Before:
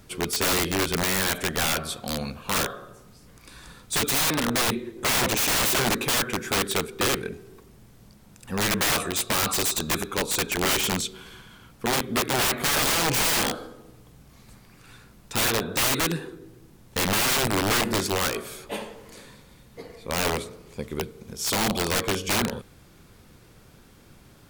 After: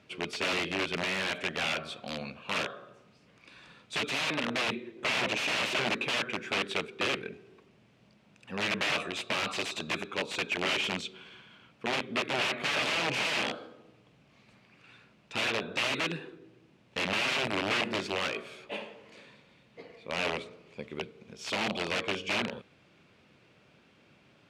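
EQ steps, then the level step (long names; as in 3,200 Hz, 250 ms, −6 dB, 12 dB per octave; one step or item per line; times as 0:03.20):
band-pass filter 140–4,400 Hz
parametric band 610 Hz +5.5 dB 0.26 octaves
parametric band 2,600 Hz +9 dB 0.66 octaves
−8.0 dB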